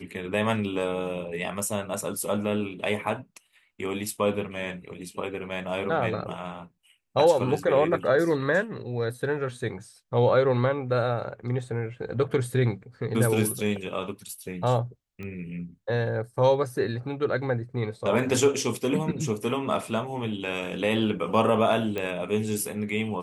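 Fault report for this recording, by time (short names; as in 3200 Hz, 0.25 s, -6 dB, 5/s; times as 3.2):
15.23 pop -26 dBFS
21.98 pop -17 dBFS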